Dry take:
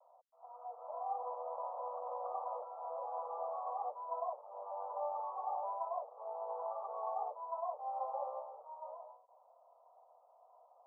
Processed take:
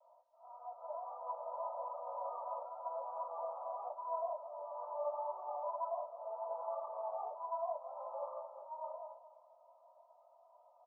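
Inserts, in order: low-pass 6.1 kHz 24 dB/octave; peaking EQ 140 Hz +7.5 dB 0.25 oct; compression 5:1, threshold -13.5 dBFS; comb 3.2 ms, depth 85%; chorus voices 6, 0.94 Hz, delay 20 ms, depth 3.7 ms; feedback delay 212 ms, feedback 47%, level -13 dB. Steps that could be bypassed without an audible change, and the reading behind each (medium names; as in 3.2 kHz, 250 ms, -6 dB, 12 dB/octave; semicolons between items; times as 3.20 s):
low-pass 6.1 kHz: input has nothing above 1.4 kHz; peaking EQ 140 Hz: input has nothing below 380 Hz; compression, threshold -13.5 dBFS: peak at its input -27.5 dBFS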